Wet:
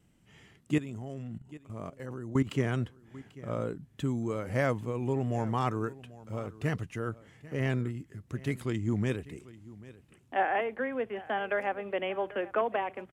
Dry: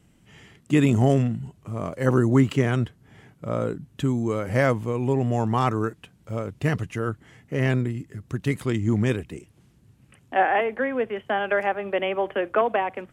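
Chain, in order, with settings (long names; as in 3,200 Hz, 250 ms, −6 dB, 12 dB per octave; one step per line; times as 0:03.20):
pitch vibrato 3.3 Hz 25 cents
0:00.78–0:02.47: output level in coarse steps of 16 dB
single-tap delay 791 ms −19 dB
level −7.5 dB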